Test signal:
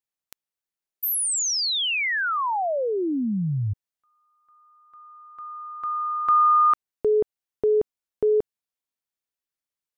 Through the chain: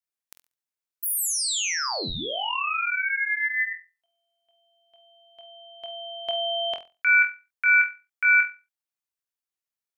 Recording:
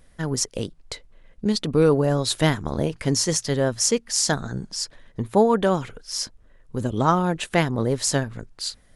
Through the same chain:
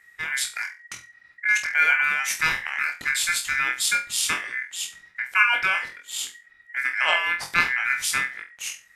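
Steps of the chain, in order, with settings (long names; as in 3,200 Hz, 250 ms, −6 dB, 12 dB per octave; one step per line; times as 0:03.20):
parametric band 1,700 Hz −5.5 dB 1.2 octaves
flutter between parallel walls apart 4 metres, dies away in 0.28 s
ring modulation 1,900 Hz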